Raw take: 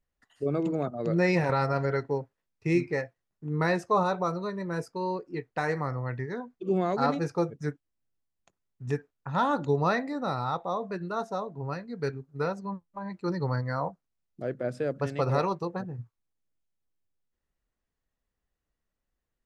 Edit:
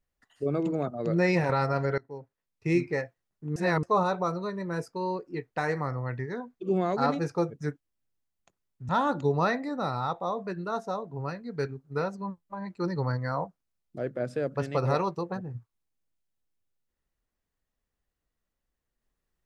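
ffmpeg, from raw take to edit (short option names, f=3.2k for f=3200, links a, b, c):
-filter_complex "[0:a]asplit=5[a][b][c][d][e];[a]atrim=end=1.98,asetpts=PTS-STARTPTS,afade=t=out:st=1.976:d=0.004:c=hsin:silence=0.0630957[f];[b]atrim=start=1.98:end=3.562,asetpts=PTS-STARTPTS,afade=t=in:d=0.73:silence=0.0630957[g];[c]atrim=start=3.558:end=3.832,asetpts=PTS-STARTPTS,areverse[h];[d]atrim=start=3.828:end=8.892[i];[e]atrim=start=9.328[j];[f][g]concat=n=2:v=0:a=1[k];[k][h]acrossfade=d=0.004:c1=hsin:c2=hsin[l];[l][i]acrossfade=d=0.004:c1=hsin:c2=hsin[m];[m][j]acrossfade=d=0.004:c1=hsin:c2=hsin"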